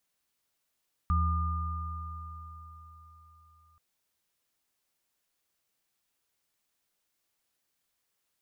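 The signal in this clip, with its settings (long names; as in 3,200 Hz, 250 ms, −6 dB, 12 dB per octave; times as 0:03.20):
inharmonic partials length 2.68 s, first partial 80.4 Hz, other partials 176/1,210 Hz, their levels −11/−5.5 dB, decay 3.94 s, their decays 2.93/4.64 s, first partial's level −23.5 dB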